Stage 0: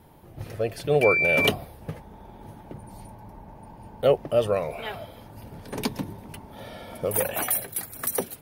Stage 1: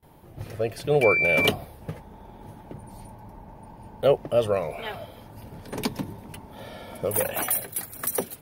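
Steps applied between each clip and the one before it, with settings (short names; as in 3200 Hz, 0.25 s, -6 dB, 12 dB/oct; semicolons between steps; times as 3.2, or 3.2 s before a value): gate with hold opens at -44 dBFS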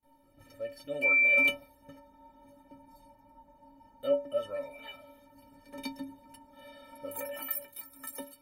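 metallic resonator 270 Hz, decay 0.31 s, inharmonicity 0.03; gain +2 dB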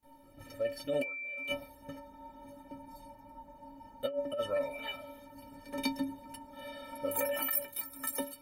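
negative-ratio compressor -35 dBFS, ratio -1; gain +1 dB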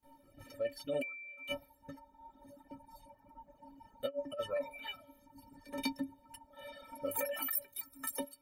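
reverb removal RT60 1.8 s; gain -2.5 dB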